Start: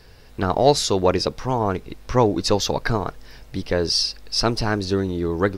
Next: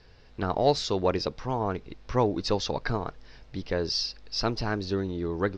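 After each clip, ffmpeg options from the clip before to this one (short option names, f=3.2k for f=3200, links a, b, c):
-af "lowpass=f=5.6k:w=0.5412,lowpass=f=5.6k:w=1.3066,volume=-7dB"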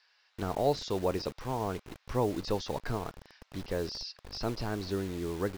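-filter_complex "[0:a]acrossover=split=900[a][b];[a]acrusher=bits=6:mix=0:aa=0.000001[c];[b]alimiter=level_in=4.5dB:limit=-24dB:level=0:latency=1:release=15,volume=-4.5dB[d];[c][d]amix=inputs=2:normalize=0,volume=-4.5dB"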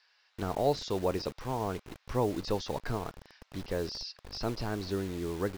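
-af anull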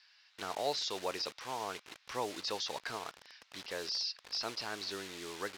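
-af "bandpass=f=4k:t=q:w=0.55:csg=0,volume=5dB"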